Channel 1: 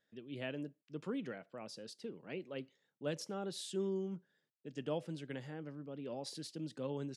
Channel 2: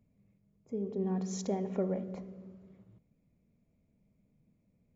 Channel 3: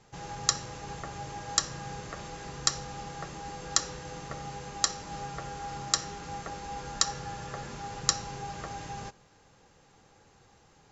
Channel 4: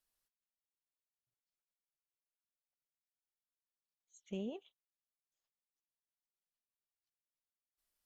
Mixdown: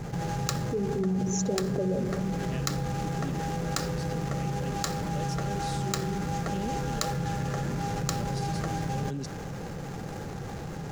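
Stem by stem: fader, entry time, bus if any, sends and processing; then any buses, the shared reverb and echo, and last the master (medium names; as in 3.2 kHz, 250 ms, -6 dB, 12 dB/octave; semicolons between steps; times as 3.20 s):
-12.0 dB, 2.10 s, no send, none
+3.0 dB, 0.00 s, no send, resonances exaggerated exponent 2; flange 1.2 Hz, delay 0.9 ms, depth 8.2 ms, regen +36%
-3.5 dB, 0.00 s, no send, median filter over 15 samples
-7.5 dB, 2.20 s, no send, none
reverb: none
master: fifteen-band graphic EQ 160 Hz +8 dB, 1 kHz -6 dB, 6.3 kHz +6 dB; level flattener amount 70%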